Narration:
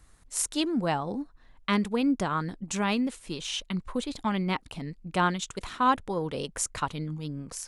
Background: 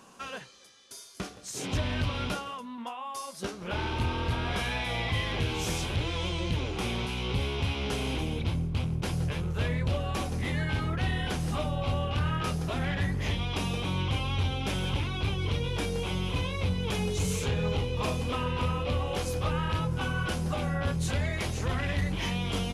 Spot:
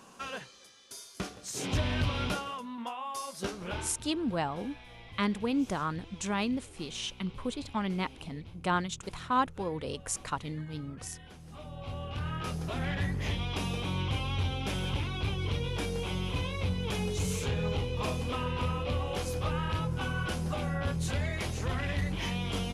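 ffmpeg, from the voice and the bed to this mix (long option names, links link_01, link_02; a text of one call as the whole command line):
ffmpeg -i stem1.wav -i stem2.wav -filter_complex "[0:a]adelay=3500,volume=-4dB[link_01];[1:a]volume=17dB,afade=type=out:start_time=3.6:duration=0.35:silence=0.105925,afade=type=in:start_time=11.45:duration=1.45:silence=0.141254[link_02];[link_01][link_02]amix=inputs=2:normalize=0" out.wav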